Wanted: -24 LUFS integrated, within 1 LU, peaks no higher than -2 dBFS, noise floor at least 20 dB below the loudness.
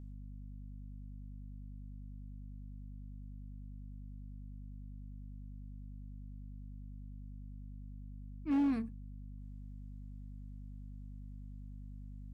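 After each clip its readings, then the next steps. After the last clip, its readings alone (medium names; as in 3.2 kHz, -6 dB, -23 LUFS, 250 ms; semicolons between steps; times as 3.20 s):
clipped samples 0.4%; clipping level -27.0 dBFS; hum 50 Hz; highest harmonic 250 Hz; hum level -45 dBFS; loudness -45.5 LUFS; peak level -27.0 dBFS; loudness target -24.0 LUFS
-> clip repair -27 dBFS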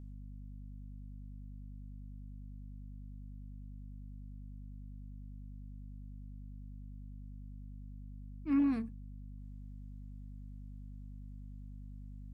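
clipped samples 0.0%; hum 50 Hz; highest harmonic 250 Hz; hum level -45 dBFS
-> de-hum 50 Hz, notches 5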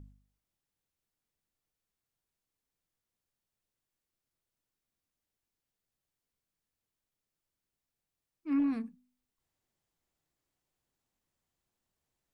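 hum not found; loudness -32.5 LUFS; peak level -22.5 dBFS; loudness target -24.0 LUFS
-> trim +8.5 dB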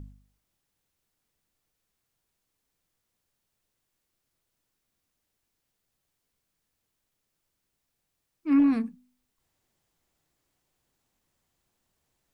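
loudness -24.0 LUFS; peak level -14.0 dBFS; noise floor -81 dBFS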